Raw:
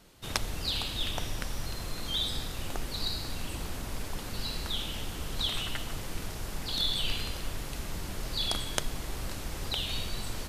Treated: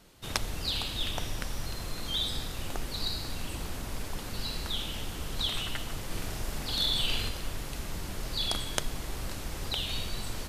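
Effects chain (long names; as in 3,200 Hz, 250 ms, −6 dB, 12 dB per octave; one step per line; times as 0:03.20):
0:06.06–0:07.29: double-tracking delay 43 ms −2.5 dB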